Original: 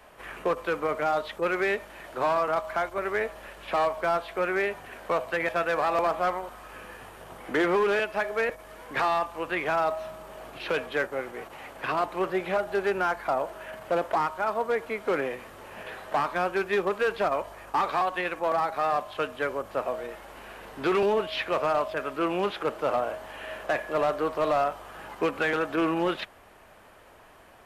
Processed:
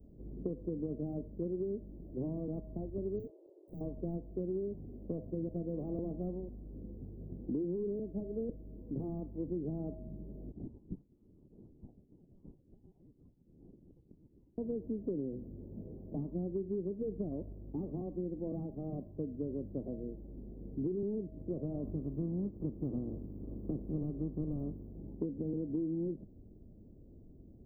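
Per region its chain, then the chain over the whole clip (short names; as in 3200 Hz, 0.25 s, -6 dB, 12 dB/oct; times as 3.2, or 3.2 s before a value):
3.19–3.81 brick-wall FIR band-pass 310–2900 Hz + hard clip -35 dBFS
10.52–14.58 compressor 5:1, threshold -35 dBFS + inverted band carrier 3400 Hz
21.82–24.86 spectral limiter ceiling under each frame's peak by 15 dB + bell 1200 Hz +10 dB 0.4 oct
whole clip: inverse Chebyshev band-stop 1500–8400 Hz, stop band 80 dB; compressor 10:1, threshold -40 dBFS; gain +7.5 dB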